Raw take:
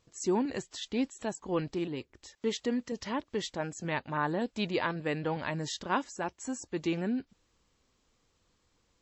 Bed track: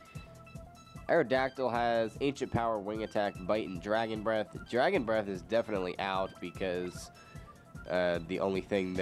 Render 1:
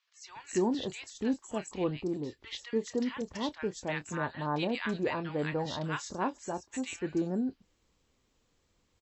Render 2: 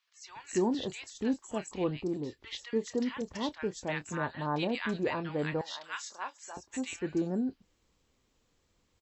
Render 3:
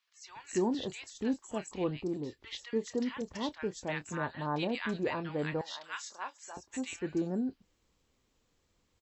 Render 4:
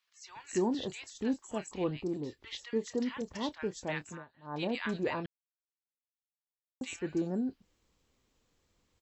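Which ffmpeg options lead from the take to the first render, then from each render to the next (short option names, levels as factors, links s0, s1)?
-filter_complex "[0:a]asplit=2[s0][s1];[s1]adelay=27,volume=0.2[s2];[s0][s2]amix=inputs=2:normalize=0,acrossover=split=1200|5200[s3][s4][s5];[s3]adelay=290[s6];[s5]adelay=330[s7];[s6][s4][s7]amix=inputs=3:normalize=0"
-filter_complex "[0:a]asettb=1/sr,asplit=3[s0][s1][s2];[s0]atrim=end=5.614[s3];[s1]atrim=start=5.61:end=6.57,asetpts=PTS-STARTPTS,afade=t=in:d=0.004:c=qsin,afade=t=out:st=0.956:d=0.004:c=qsin,highpass=1200[s4];[s2]atrim=start=6.566[s5];[s3][s4]acrossfade=d=0.004:c1=hsin:c2=qsin[s6];[s6][s5]acrossfade=d=0.004:c1=qsin:c2=hsin"
-af "volume=0.841"
-filter_complex "[0:a]asplit=5[s0][s1][s2][s3][s4];[s0]atrim=end=4.25,asetpts=PTS-STARTPTS,afade=t=out:st=4:d=0.25:silence=0.0794328[s5];[s1]atrim=start=4.25:end=4.42,asetpts=PTS-STARTPTS,volume=0.0794[s6];[s2]atrim=start=4.42:end=5.26,asetpts=PTS-STARTPTS,afade=t=in:d=0.25:silence=0.0794328,afade=t=out:st=0.836:d=0.004:c=hsin[s7];[s3]atrim=start=5.26:end=6.81,asetpts=PTS-STARTPTS,volume=0[s8];[s4]atrim=start=6.81,asetpts=PTS-STARTPTS,afade=t=in:d=0.004:c=hsin[s9];[s5][s6][s7][s8][s9]concat=n=5:v=0:a=1"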